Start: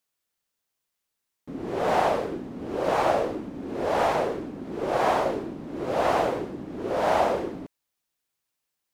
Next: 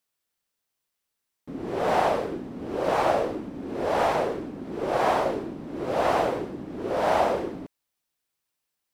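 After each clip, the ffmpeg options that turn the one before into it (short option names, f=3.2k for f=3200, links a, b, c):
-af "bandreject=f=6.7k:w=25"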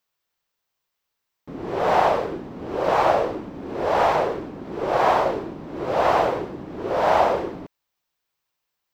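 -af "equalizer=f=250:t=o:w=0.67:g=-5,equalizer=f=1k:t=o:w=0.67:g=3,equalizer=f=10k:t=o:w=0.67:g=-11,volume=3.5dB"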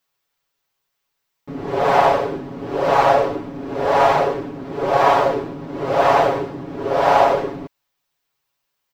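-af "aecho=1:1:7.2:0.85,volume=2dB"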